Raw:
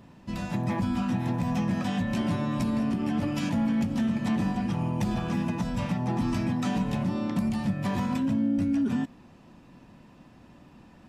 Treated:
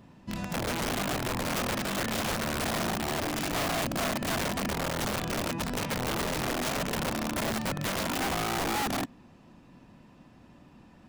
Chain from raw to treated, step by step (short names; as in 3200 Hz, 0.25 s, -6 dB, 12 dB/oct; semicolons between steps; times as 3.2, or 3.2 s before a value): wrapped overs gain 23.5 dB; gain -2 dB